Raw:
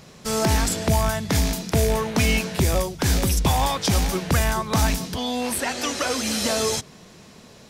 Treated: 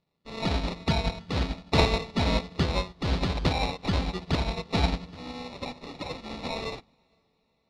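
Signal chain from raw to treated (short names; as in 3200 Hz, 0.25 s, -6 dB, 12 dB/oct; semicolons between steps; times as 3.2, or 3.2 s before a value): 1.71–2.15 high shelf 2400 Hz +9.5 dB; sample-and-hold 28×; synth low-pass 4200 Hz, resonance Q 2.8; in parallel at -10 dB: soft clip -14.5 dBFS, distortion -15 dB; on the sum: diffused feedback echo 0.485 s, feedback 57%, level -15 dB; on a send at -13 dB: reverb RT60 1.0 s, pre-delay 3 ms; on the sum: upward expander 2.5:1, over -34 dBFS; gain -4 dB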